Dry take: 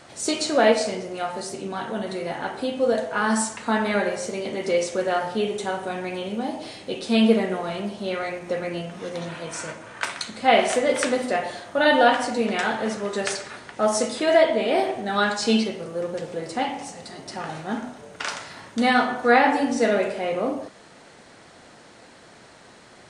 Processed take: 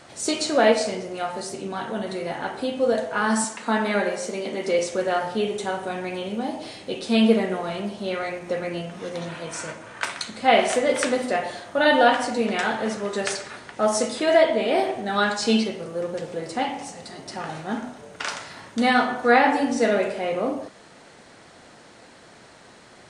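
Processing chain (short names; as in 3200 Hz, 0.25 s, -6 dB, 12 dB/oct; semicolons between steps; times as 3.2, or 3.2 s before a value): 3.44–4.79 HPF 160 Hz 24 dB/oct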